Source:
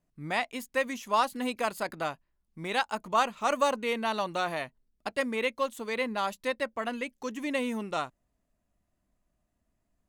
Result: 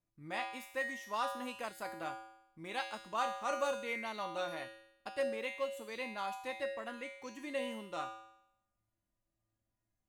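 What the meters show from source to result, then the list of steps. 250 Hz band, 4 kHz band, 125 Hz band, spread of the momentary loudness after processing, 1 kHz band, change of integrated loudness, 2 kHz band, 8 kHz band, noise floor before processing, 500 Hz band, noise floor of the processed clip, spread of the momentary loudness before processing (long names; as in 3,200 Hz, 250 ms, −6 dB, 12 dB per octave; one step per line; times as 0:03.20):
−12.0 dB, −9.0 dB, −12.5 dB, 10 LU, −9.0 dB, −8.5 dB, −8.0 dB, −9.0 dB, −79 dBFS, −8.0 dB, below −85 dBFS, 8 LU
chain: tuned comb filter 110 Hz, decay 0.78 s, harmonics odd, mix 90%
level +6 dB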